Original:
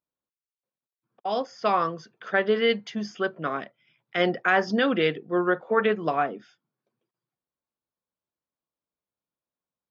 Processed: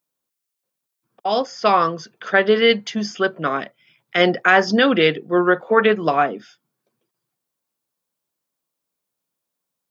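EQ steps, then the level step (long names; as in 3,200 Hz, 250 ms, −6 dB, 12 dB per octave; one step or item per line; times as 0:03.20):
high-pass filter 94 Hz
high-shelf EQ 5,000 Hz +9 dB
+7.0 dB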